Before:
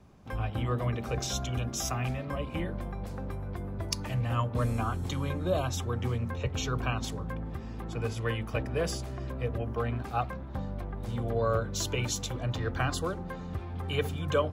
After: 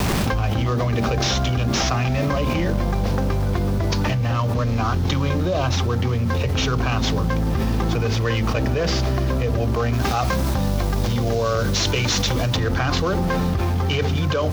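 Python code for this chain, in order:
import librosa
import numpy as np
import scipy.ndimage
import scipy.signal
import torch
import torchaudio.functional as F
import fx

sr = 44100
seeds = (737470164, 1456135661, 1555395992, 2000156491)

y = fx.cvsd(x, sr, bps=32000)
y = fx.quant_dither(y, sr, seeds[0], bits=10, dither='none')
y = fx.high_shelf(y, sr, hz=3300.0, db=8.5, at=(9.93, 12.57))
y = fx.env_flatten(y, sr, amount_pct=100)
y = y * librosa.db_to_amplitude(2.5)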